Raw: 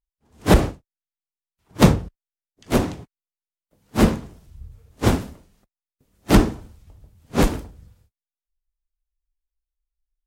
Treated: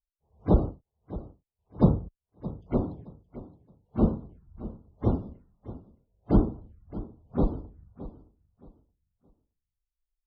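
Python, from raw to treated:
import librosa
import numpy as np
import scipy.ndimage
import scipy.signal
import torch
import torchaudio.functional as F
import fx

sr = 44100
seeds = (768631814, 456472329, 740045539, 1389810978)

y = fx.env_phaser(x, sr, low_hz=260.0, high_hz=2000.0, full_db=-20.5)
y = fx.echo_feedback(y, sr, ms=620, feedback_pct=26, wet_db=-16)
y = fx.spec_topn(y, sr, count=64)
y = fx.spacing_loss(y, sr, db_at_10k=39)
y = F.gain(torch.from_numpy(y), -5.5).numpy()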